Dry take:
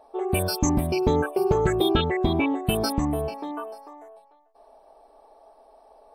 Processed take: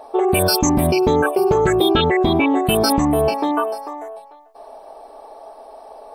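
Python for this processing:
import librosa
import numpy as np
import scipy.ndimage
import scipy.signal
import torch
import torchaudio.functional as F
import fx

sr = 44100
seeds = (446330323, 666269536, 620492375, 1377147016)

p1 = fx.low_shelf(x, sr, hz=140.0, db=-8.5)
p2 = fx.over_compress(p1, sr, threshold_db=-30.0, ratio=-1.0)
p3 = p1 + (p2 * 10.0 ** (2.0 / 20.0))
y = p3 * 10.0 ** (4.5 / 20.0)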